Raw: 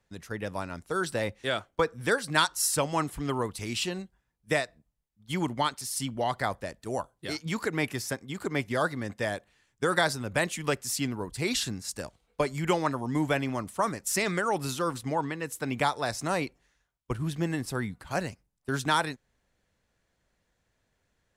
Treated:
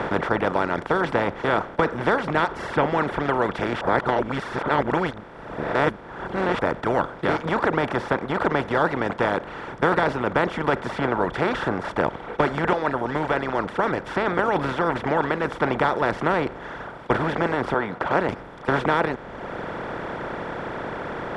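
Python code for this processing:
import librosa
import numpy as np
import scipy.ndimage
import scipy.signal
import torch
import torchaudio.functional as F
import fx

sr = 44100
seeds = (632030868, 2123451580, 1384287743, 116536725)

y = fx.bandpass_q(x, sr, hz=840.0, q=0.54, at=(17.74, 18.29))
y = fx.edit(y, sr, fx.reverse_span(start_s=3.81, length_s=2.78),
    fx.clip_gain(start_s=12.73, length_s=1.66, db=-7.0), tone=tone)
y = fx.bin_compress(y, sr, power=0.2)
y = fx.dereverb_blind(y, sr, rt60_s=1.7)
y = scipy.signal.sosfilt(scipy.signal.butter(2, 1700.0, 'lowpass', fs=sr, output='sos'), y)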